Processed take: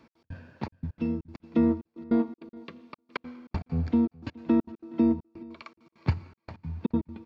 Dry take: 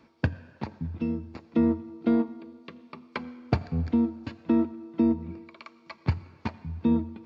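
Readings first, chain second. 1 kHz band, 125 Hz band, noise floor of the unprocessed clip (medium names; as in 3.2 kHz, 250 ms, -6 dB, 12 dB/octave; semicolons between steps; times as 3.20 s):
-2.5 dB, -2.0 dB, -59 dBFS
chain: trance gate "x.x.xxxxx..x.xx" 199 bpm -60 dB; delay 420 ms -22.5 dB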